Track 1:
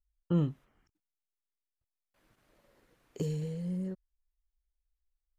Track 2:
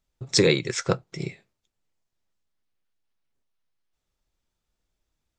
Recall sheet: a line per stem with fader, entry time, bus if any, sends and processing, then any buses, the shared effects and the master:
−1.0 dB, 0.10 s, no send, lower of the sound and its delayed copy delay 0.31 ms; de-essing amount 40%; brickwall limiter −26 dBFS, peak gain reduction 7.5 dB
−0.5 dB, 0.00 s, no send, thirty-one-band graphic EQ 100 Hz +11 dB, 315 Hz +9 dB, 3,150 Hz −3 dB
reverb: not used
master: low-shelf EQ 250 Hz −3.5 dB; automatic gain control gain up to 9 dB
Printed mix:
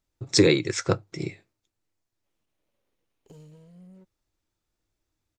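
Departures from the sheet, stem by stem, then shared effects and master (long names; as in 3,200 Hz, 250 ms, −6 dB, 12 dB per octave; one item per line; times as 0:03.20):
stem 1 −1.0 dB → −12.5 dB
master: missing automatic gain control gain up to 9 dB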